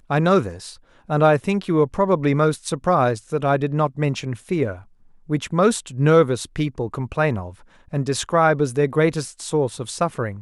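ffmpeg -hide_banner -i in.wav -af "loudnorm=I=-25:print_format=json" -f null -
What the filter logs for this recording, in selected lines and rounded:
"input_i" : "-21.0",
"input_tp" : "-3.0",
"input_lra" : "2.2",
"input_thresh" : "-31.4",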